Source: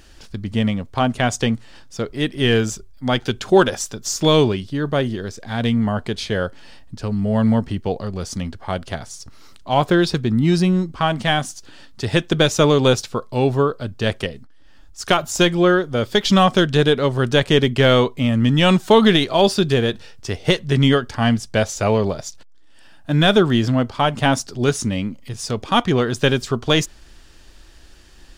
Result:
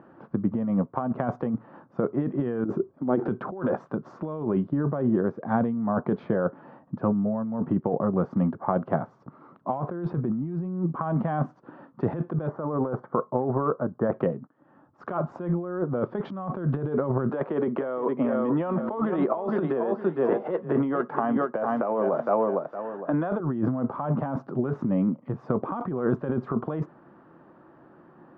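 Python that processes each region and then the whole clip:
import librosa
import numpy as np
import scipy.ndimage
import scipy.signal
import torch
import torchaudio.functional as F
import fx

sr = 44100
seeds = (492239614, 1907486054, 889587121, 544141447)

y = fx.chain(x, sr, fx.steep_lowpass(hz=11000.0, slope=36),
    fx.peak_eq(hz=350.0, db=13.5, octaves=1.0),
    fx.over_compress(threshold_db=-17.0, ratio=-0.5), at=(2.65, 3.28))
y = fx.chain(y, sr, fx.savgol(points=41),
    fx.low_shelf(hz=340.0, db=-5.0), at=(12.47, 14.12))
y = fx.chain(y, sr, fx.bandpass_edges(low_hz=330.0, high_hz=4800.0),
    fx.echo_feedback(ms=460, feedback_pct=18, wet_db=-10.5),
    fx.band_squash(depth_pct=40), at=(17.29, 23.4))
y = scipy.signal.sosfilt(scipy.signal.cheby1(3, 1.0, [150.0, 1200.0], 'bandpass', fs=sr, output='sos'), y)
y = fx.notch(y, sr, hz=430.0, q=12.0)
y = fx.over_compress(y, sr, threshold_db=-26.0, ratio=-1.0)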